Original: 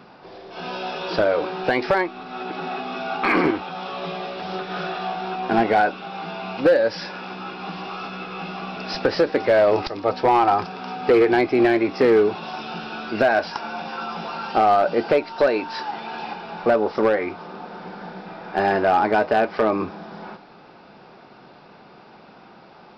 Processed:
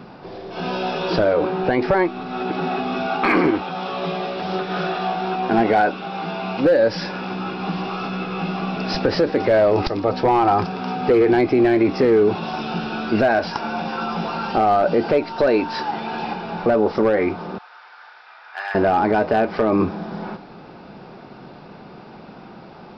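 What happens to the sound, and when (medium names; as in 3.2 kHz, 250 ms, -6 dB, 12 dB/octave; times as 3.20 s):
1.33–2.02 s: treble shelf 3.5 kHz -9.5 dB
3.06–6.65 s: bass shelf 200 Hz -6.5 dB
17.58–18.75 s: ladder high-pass 1 kHz, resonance 25%
whole clip: bass shelf 380 Hz +9.5 dB; peak limiter -11 dBFS; trim +2.5 dB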